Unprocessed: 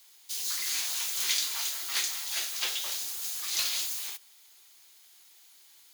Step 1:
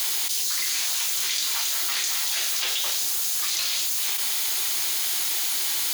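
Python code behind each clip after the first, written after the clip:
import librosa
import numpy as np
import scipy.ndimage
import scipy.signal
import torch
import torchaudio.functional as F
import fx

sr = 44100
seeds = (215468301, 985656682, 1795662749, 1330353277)

y = fx.env_flatten(x, sr, amount_pct=100)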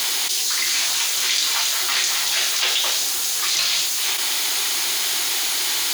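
y = fx.high_shelf(x, sr, hz=9300.0, db=-10.0)
y = F.gain(torch.from_numpy(y), 8.0).numpy()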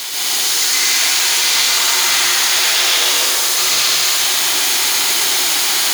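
y = x + 10.0 ** (-5.0 / 20.0) * np.pad(x, (int(125 * sr / 1000.0), 0))[:len(x)]
y = fx.rev_plate(y, sr, seeds[0], rt60_s=4.0, hf_ratio=0.5, predelay_ms=110, drr_db=-9.0)
y = F.gain(torch.from_numpy(y), -2.5).numpy()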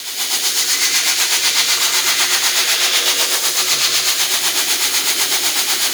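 y = fx.rotary(x, sr, hz=8.0)
y = F.gain(torch.from_numpy(y), 1.5).numpy()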